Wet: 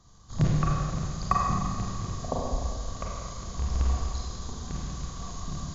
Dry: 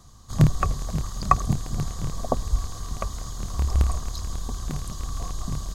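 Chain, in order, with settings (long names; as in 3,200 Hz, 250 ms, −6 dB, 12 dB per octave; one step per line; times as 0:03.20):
linear-phase brick-wall low-pass 7,400 Hz
four-comb reverb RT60 1.9 s, combs from 33 ms, DRR −3.5 dB
level −7.5 dB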